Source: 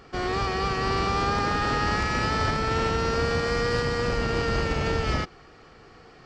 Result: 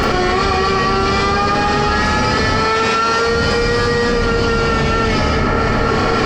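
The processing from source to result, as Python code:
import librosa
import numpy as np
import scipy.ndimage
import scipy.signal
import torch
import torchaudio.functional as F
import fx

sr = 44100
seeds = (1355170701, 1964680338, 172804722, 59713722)

y = fx.highpass(x, sr, hz=570.0, slope=6, at=(2.56, 3.26))
y = fx.echo_bbd(y, sr, ms=284, stages=4096, feedback_pct=57, wet_db=-16.5)
y = fx.rev_schroeder(y, sr, rt60_s=0.43, comb_ms=28, drr_db=-8.5)
y = fx.env_flatten(y, sr, amount_pct=100)
y = y * librosa.db_to_amplitude(-1.0)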